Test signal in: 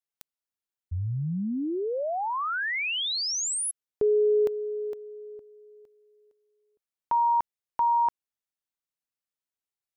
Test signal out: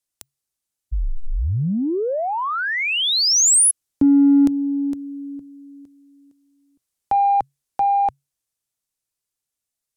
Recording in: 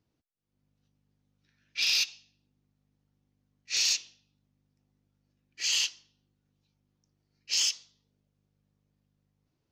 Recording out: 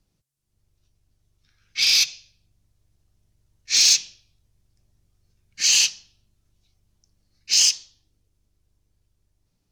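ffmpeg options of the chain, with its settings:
ffmpeg -i in.wav -filter_complex "[0:a]equalizer=frequency=9000:width_type=o:width=2.3:gain=14.5,dynaudnorm=framelen=140:gausssize=31:maxgain=3dB,tiltshelf=frequency=840:gain=5,afreqshift=-140,asplit=2[link_01][link_02];[link_02]asoftclip=type=tanh:threshold=-20dB,volume=-9.5dB[link_03];[link_01][link_03]amix=inputs=2:normalize=0,volume=1.5dB" out.wav

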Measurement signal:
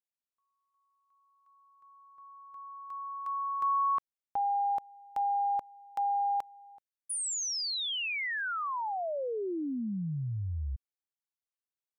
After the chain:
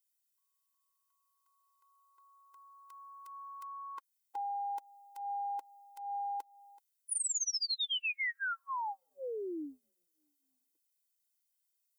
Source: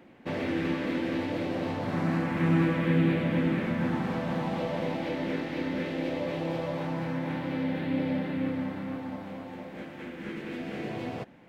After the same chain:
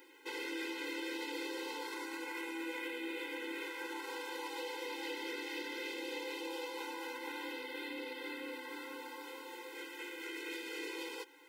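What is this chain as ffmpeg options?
ffmpeg -i in.wav -af "crystalizer=i=10:c=0,acompressor=threshold=-24dB:ratio=8:attack=0.2:release=194:knee=6:detection=rms,afftfilt=real='re*eq(mod(floor(b*sr/1024/270),2),1)':imag='im*eq(mod(floor(b*sr/1024/270),2),1)':win_size=1024:overlap=0.75,volume=-6dB" out.wav

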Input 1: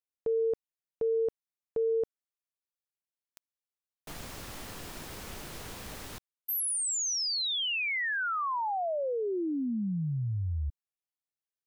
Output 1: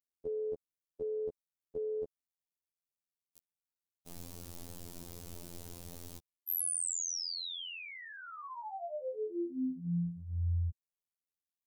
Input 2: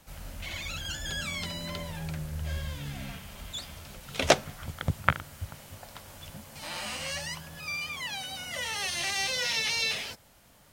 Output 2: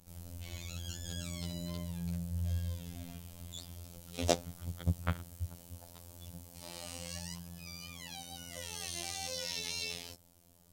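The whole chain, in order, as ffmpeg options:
ffmpeg -i in.wav -af "equalizer=frequency=1700:width_type=o:width=2.4:gain=-15,afftfilt=real='hypot(re,im)*cos(PI*b)':imag='0':win_size=2048:overlap=0.75,volume=1dB" out.wav

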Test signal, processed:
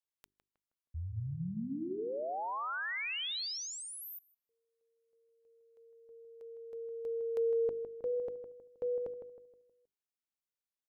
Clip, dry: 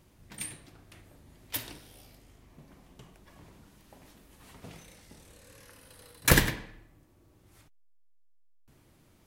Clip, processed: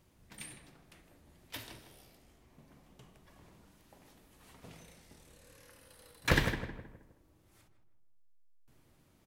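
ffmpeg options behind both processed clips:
ffmpeg -i in.wav -filter_complex "[0:a]bandreject=frequency=50:width_type=h:width=6,bandreject=frequency=100:width_type=h:width=6,bandreject=frequency=150:width_type=h:width=6,bandreject=frequency=200:width_type=h:width=6,bandreject=frequency=250:width_type=h:width=6,bandreject=frequency=300:width_type=h:width=6,bandreject=frequency=350:width_type=h:width=6,bandreject=frequency=400:width_type=h:width=6,acrossover=split=5100[link_01][link_02];[link_02]acompressor=threshold=-41dB:ratio=4:attack=1:release=60[link_03];[link_01][link_03]amix=inputs=2:normalize=0,asplit=2[link_04][link_05];[link_05]adelay=158,lowpass=frequency=1700:poles=1,volume=-8dB,asplit=2[link_06][link_07];[link_07]adelay=158,lowpass=frequency=1700:poles=1,volume=0.42,asplit=2[link_08][link_09];[link_09]adelay=158,lowpass=frequency=1700:poles=1,volume=0.42,asplit=2[link_10][link_11];[link_11]adelay=158,lowpass=frequency=1700:poles=1,volume=0.42,asplit=2[link_12][link_13];[link_13]adelay=158,lowpass=frequency=1700:poles=1,volume=0.42[link_14];[link_04][link_06][link_08][link_10][link_12][link_14]amix=inputs=6:normalize=0,volume=-5dB" out.wav

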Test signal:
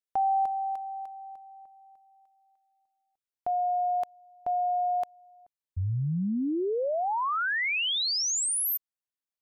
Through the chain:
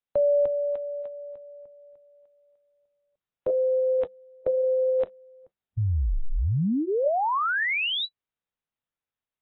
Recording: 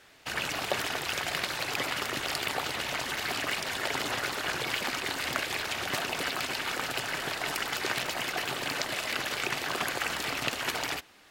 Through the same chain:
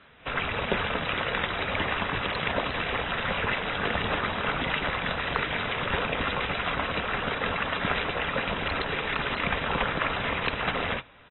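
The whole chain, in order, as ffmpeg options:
ffmpeg -i in.wav -af "highshelf=frequency=4000:gain=-8,bandreject=frequency=550:width=12,aresample=11025,aresample=44100,afreqshift=-200,volume=4.5dB" -ar 24000 -c:a aac -b:a 16k out.aac

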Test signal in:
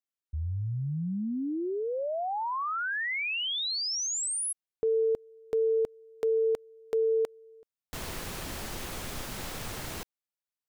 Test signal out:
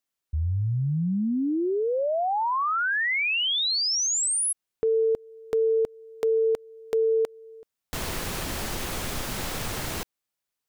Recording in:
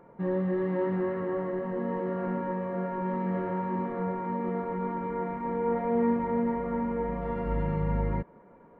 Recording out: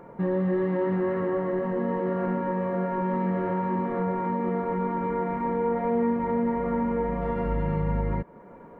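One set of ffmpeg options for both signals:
ffmpeg -i in.wav -af "acompressor=threshold=-30dB:ratio=2.5:attack=0.91:release=405:knee=6:detection=rms,volume=8dB" out.wav

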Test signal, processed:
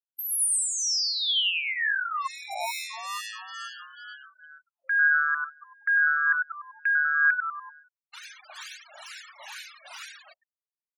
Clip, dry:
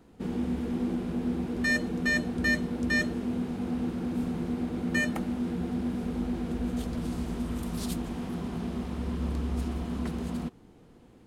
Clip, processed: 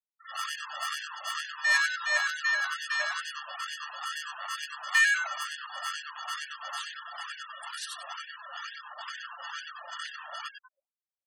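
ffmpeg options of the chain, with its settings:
ffmpeg -i in.wav -filter_complex "[0:a]acrossover=split=1000[link_01][link_02];[link_01]acrusher=samples=28:mix=1:aa=0.000001[link_03];[link_03][link_02]amix=inputs=2:normalize=0,tremolo=f=2.2:d=0.61,aphaser=in_gain=1:out_gain=1:delay=2.1:decay=0.23:speed=0.45:type=triangular,asplit=2[link_04][link_05];[link_05]asplit=6[link_06][link_07][link_08][link_09][link_10][link_11];[link_06]adelay=97,afreqshift=-150,volume=-4dB[link_12];[link_07]adelay=194,afreqshift=-300,volume=-10.7dB[link_13];[link_08]adelay=291,afreqshift=-450,volume=-17.5dB[link_14];[link_09]adelay=388,afreqshift=-600,volume=-24.2dB[link_15];[link_10]adelay=485,afreqshift=-750,volume=-31dB[link_16];[link_11]adelay=582,afreqshift=-900,volume=-37.7dB[link_17];[link_12][link_13][link_14][link_15][link_16][link_17]amix=inputs=6:normalize=0[link_18];[link_04][link_18]amix=inputs=2:normalize=0,afftfilt=real='re*gte(hypot(re,im),0.00891)':imag='im*gte(hypot(re,im),0.00891)':win_size=1024:overlap=0.75,highpass=90,bandreject=frequency=2000:width=13,afftfilt=real='re*gte(b*sr/1024,550*pow(1500/550,0.5+0.5*sin(2*PI*2.2*pts/sr)))':imag='im*gte(b*sr/1024,550*pow(1500/550,0.5+0.5*sin(2*PI*2.2*pts/sr)))':win_size=1024:overlap=0.75,volume=7dB" out.wav

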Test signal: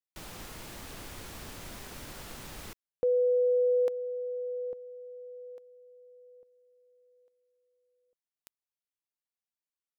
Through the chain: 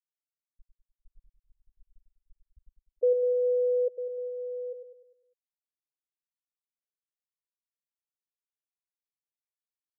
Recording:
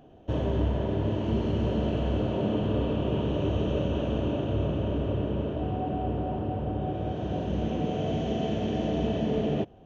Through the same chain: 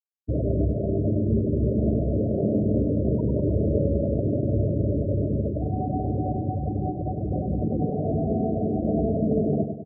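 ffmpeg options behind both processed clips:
ffmpeg -i in.wav -filter_complex "[0:a]asplit=2[link_01][link_02];[link_02]adelay=209,lowpass=frequency=2000:poles=1,volume=-19.5dB,asplit=2[link_03][link_04];[link_04]adelay=209,lowpass=frequency=2000:poles=1,volume=0.43,asplit=2[link_05][link_06];[link_06]adelay=209,lowpass=frequency=2000:poles=1,volume=0.43[link_07];[link_03][link_05][link_07]amix=inputs=3:normalize=0[link_08];[link_01][link_08]amix=inputs=2:normalize=0,afftfilt=real='re*gte(hypot(re,im),0.1)':imag='im*gte(hypot(re,im),0.1)':win_size=1024:overlap=0.75,asplit=2[link_09][link_10];[link_10]aecho=0:1:100|200|300|400|500|600:0.447|0.214|0.103|0.0494|0.0237|0.0114[link_11];[link_09][link_11]amix=inputs=2:normalize=0,volume=3.5dB" out.wav

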